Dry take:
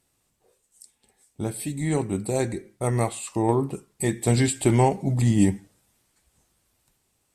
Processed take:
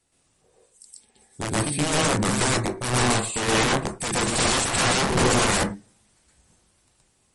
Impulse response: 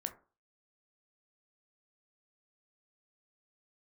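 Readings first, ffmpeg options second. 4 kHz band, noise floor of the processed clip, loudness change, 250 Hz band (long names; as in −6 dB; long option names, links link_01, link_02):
+14.5 dB, −66 dBFS, +2.5 dB, −2.0 dB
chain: -filter_complex "[0:a]adynamicequalizer=threshold=0.00794:dfrequency=180:dqfactor=4.7:tfrequency=180:tqfactor=4.7:attack=5:release=100:ratio=0.375:range=2:mode=boostabove:tftype=bell,aeval=exprs='(mod(11.2*val(0)+1,2)-1)/11.2':channel_layout=same,asplit=2[link_01][link_02];[1:a]atrim=start_sample=2205,afade=type=out:start_time=0.16:duration=0.01,atrim=end_sample=7497,adelay=121[link_03];[link_02][link_03]afir=irnorm=-1:irlink=0,volume=6dB[link_04];[link_01][link_04]amix=inputs=2:normalize=0" -ar 48000 -c:a libmp3lame -b:a 48k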